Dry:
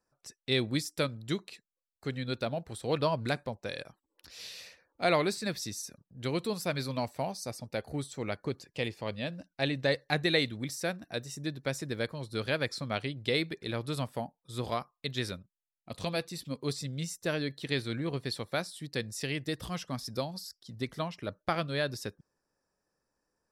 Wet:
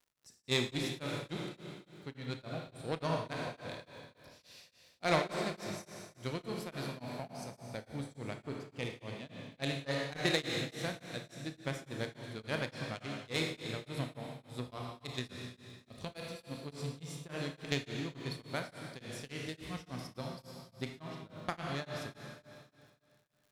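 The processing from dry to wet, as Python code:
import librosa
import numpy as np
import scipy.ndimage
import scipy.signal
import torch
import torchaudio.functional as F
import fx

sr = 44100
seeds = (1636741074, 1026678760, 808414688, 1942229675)

y = fx.bass_treble(x, sr, bass_db=5, treble_db=1)
y = fx.cheby_harmonics(y, sr, harmonics=(3, 7), levels_db=(-15, -29), full_scale_db=-11.0)
y = fx.rev_schroeder(y, sr, rt60_s=2.3, comb_ms=25, drr_db=1.0)
y = fx.dmg_crackle(y, sr, seeds[0], per_s=170.0, level_db=-59.0)
y = y * np.abs(np.cos(np.pi * 3.5 * np.arange(len(y)) / sr))
y = F.gain(torch.from_numpy(y), 1.5).numpy()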